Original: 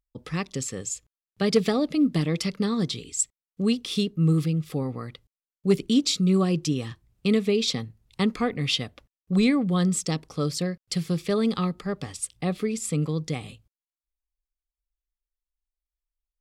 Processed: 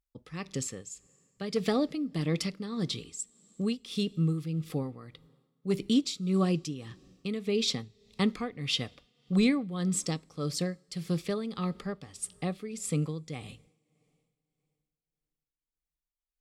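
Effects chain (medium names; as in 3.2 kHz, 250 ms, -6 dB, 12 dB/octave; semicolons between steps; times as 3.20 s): two-slope reverb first 0.26 s, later 3.1 s, from -18 dB, DRR 18.5 dB; tremolo 1.7 Hz, depth 68%; trim -3 dB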